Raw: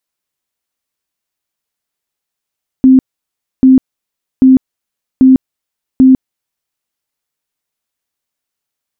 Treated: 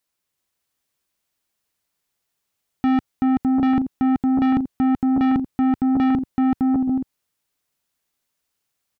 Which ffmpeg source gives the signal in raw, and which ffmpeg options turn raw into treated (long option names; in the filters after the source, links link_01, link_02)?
-f lavfi -i "aevalsrc='0.841*sin(2*PI*261*mod(t,0.79))*lt(mod(t,0.79),39/261)':duration=3.95:sample_rate=44100"
-af "aecho=1:1:380|608|744.8|826.9|876.1:0.631|0.398|0.251|0.158|0.1,asoftclip=type=tanh:threshold=-17dB,equalizer=frequency=94:width=0.66:gain=3"